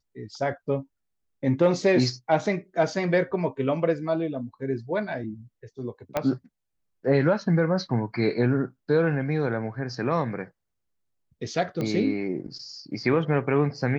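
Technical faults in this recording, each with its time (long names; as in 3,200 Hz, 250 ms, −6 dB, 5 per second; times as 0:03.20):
0:06.17: click −11 dBFS
0:11.81: click −18 dBFS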